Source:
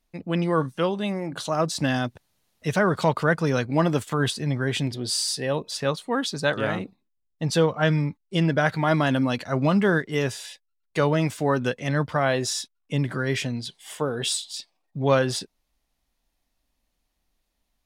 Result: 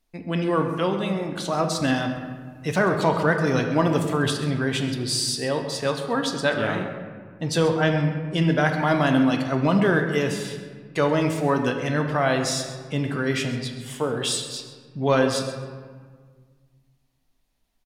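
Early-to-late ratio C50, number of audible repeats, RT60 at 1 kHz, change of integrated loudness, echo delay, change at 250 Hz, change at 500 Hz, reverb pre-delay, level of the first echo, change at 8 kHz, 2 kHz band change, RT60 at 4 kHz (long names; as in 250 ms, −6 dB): 6.0 dB, 1, 1.7 s, +1.0 dB, 132 ms, +2.0 dB, +1.5 dB, 3 ms, −14.5 dB, +0.5 dB, +1.5 dB, 0.95 s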